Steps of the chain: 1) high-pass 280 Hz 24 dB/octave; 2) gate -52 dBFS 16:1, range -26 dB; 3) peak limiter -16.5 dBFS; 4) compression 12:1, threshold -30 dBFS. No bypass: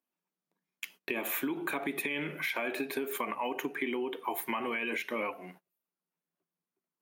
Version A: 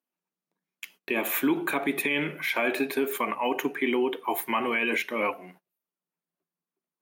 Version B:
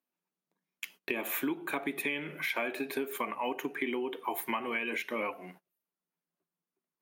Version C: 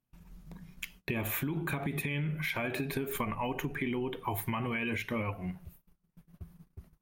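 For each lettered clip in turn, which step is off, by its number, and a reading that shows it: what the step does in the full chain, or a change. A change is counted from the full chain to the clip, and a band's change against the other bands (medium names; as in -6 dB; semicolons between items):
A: 4, mean gain reduction 6.0 dB; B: 3, crest factor change +2.0 dB; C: 1, 125 Hz band +18.5 dB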